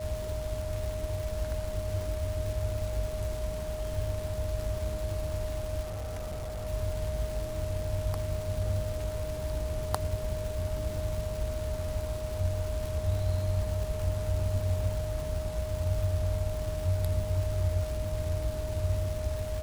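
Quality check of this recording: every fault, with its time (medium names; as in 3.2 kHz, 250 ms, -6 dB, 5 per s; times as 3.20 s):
crackle 450 per s -37 dBFS
whine 620 Hz -36 dBFS
5.82–6.67 s: clipped -33 dBFS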